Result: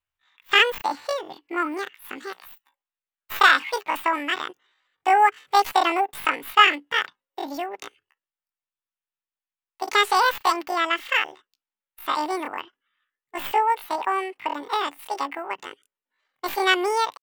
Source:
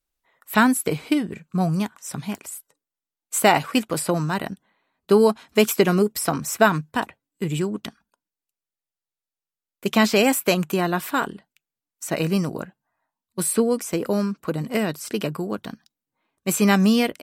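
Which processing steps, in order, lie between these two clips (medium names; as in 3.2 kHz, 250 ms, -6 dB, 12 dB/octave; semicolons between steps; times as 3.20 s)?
tracing distortion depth 0.037 ms; high-order bell 900 Hz +11 dB 2.4 oct; pitch shift +11 st; trim -8.5 dB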